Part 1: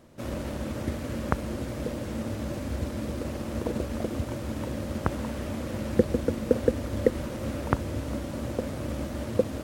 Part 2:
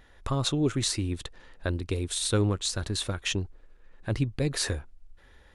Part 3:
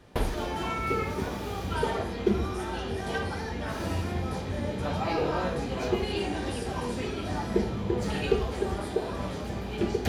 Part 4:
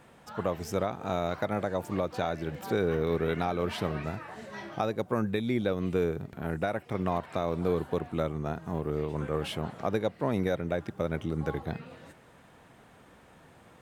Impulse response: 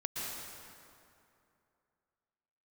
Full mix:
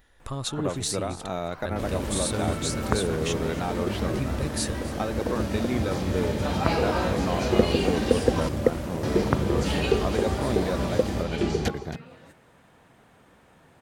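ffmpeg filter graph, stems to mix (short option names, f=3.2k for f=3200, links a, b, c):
-filter_complex "[0:a]adelay=1600,volume=1dB[a];[1:a]highshelf=f=8.1k:g=12,volume=-5dB,asplit=3[b][c][d];[c]volume=-17.5dB[e];[2:a]lowpass=7.6k,highshelf=f=5k:g=9.5,adelay=1600,volume=2dB,asplit=3[f][g][h];[f]atrim=end=8.49,asetpts=PTS-STARTPTS,afade=t=out:st=8.486:d=0.004:c=hsin[i];[g]atrim=start=8.49:end=9.03,asetpts=PTS-STARTPTS,volume=0[j];[h]atrim=start=9.03,asetpts=PTS-STARTPTS,afade=t=in:d=0.004:c=hsin[k];[i][j][k]concat=n=3:v=0:a=1,asplit=2[l][m];[m]volume=-13.5dB[n];[3:a]adelay=200,volume=-0.5dB[o];[d]apad=whole_len=515290[p];[l][p]sidechaincompress=threshold=-45dB:ratio=8:attack=16:release=1070[q];[e][n]amix=inputs=2:normalize=0,aecho=0:1:272:1[r];[a][b][q][o][r]amix=inputs=5:normalize=0"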